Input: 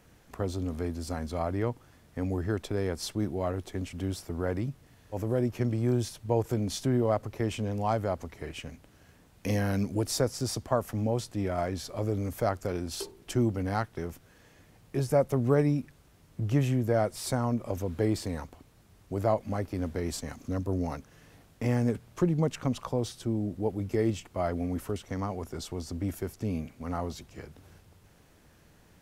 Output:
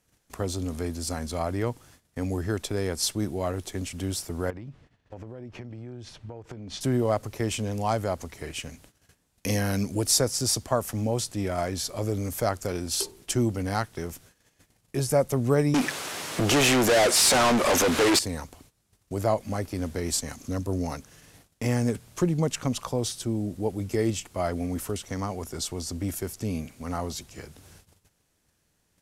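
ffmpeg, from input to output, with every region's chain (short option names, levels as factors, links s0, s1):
-filter_complex "[0:a]asettb=1/sr,asplit=3[s0][s1][s2];[s0]atrim=end=4.504[s3];[s1]atrim=start=4.5:end=6.81,asetpts=PTS-STARTPTS,afade=t=in:d=0.004:c=qsin,afade=t=out:st=2.306:d=0.004:c=qsin,lowpass=2800,acompressor=threshold=0.0141:ratio=12:attack=3.2:release=140:knee=1:detection=peak[s4];[s2]atrim=start=6.806[s5];[s3][s4]acrossfade=d=0.004:c1=hsin:c2=qsin[s6];[s6][s5]acrossfade=d=0.004:c1=qsin:c2=hsin,asettb=1/sr,asplit=3[s7][s8][s9];[s7]atrim=end=15.744[s10];[s8]atrim=start=15.74:end=18.19,asetpts=PTS-STARTPTS,afade=t=in:d=0.004:c=qsin,afade=t=out:st=2.446:d=0.004:c=qsin,highpass=f=120:p=1,bass=f=250:g=-5,treble=f=4000:g=-1,asplit=2[s11][s12];[s12]highpass=f=720:p=1,volume=70.8,asoftclip=type=tanh:threshold=0.158[s13];[s11][s13]amix=inputs=2:normalize=0,lowpass=f=2900:p=1,volume=0.501[s14];[s9]atrim=start=18.186[s15];[s10][s14]acrossfade=d=0.004:c1=hsin:c2=qsin[s16];[s16][s15]acrossfade=d=0.004:c1=qsin:c2=hsin,agate=range=0.158:threshold=0.00178:ratio=16:detection=peak,lowpass=9900,aemphasis=mode=production:type=75kf,volume=1.19"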